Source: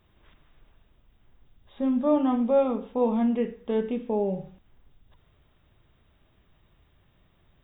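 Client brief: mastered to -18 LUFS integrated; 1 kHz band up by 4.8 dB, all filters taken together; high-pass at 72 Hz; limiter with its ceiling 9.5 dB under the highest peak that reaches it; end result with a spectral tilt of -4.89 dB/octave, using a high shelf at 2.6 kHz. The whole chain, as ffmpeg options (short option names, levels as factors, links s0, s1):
-af "highpass=72,equalizer=f=1000:t=o:g=5,highshelf=f=2600:g=8,volume=3.55,alimiter=limit=0.355:level=0:latency=1"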